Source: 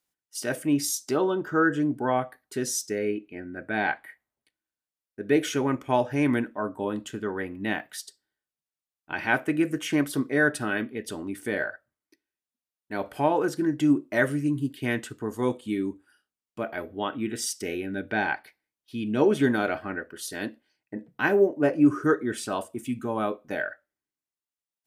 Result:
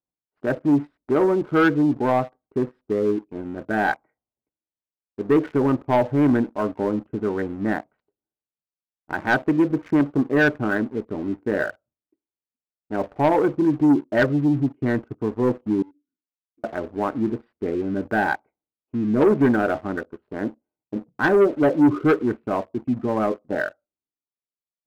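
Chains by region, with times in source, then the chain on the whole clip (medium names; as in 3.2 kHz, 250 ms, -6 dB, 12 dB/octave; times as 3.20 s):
15.82–16.64 s: comb filter that takes the minimum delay 2.7 ms + compression 5:1, threshold -41 dBFS + vowel filter i
whole clip: local Wiener filter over 25 samples; inverse Chebyshev low-pass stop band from 5.8 kHz, stop band 60 dB; waveshaping leveller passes 2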